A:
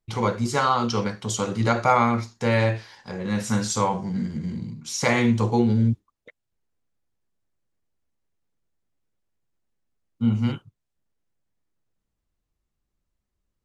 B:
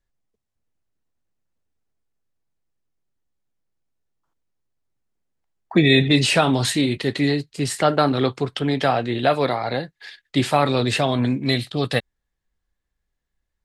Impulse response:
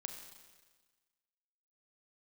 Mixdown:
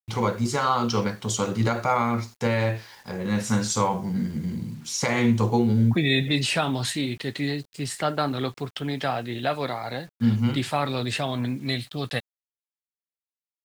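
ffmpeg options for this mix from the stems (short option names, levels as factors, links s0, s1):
-filter_complex "[0:a]alimiter=limit=0.251:level=0:latency=1:release=218,volume=1.06[s0];[1:a]equalizer=f=430:t=o:w=1.4:g=-4,adelay=200,volume=0.531[s1];[s0][s1]amix=inputs=2:normalize=0,acrusher=bits=8:mix=0:aa=0.000001"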